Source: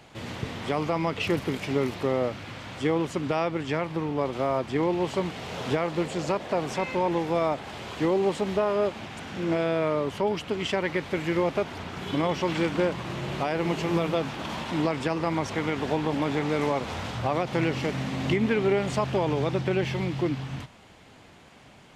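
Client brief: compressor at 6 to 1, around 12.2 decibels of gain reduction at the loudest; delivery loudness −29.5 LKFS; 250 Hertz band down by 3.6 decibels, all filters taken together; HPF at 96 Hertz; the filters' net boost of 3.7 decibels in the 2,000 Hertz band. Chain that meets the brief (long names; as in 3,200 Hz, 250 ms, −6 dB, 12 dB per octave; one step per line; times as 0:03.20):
high-pass filter 96 Hz
parametric band 250 Hz −5.5 dB
parametric band 2,000 Hz +4.5 dB
downward compressor 6 to 1, threshold −35 dBFS
level +9 dB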